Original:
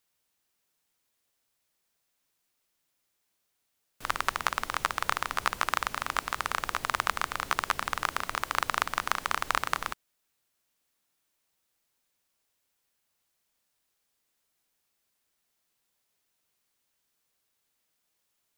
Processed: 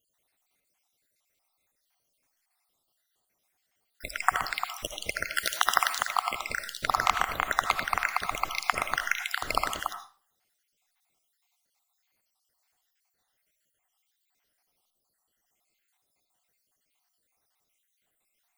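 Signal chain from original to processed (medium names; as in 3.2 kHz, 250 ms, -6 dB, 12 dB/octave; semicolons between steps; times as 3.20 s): random holes in the spectrogram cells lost 66%; 5.36–6.06 s: tilt EQ +2.5 dB/octave; small resonant body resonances 740/2100 Hz, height 8 dB, ringing for 30 ms; reverberation RT60 0.40 s, pre-delay 40 ms, DRR 7.5 dB; trim +5 dB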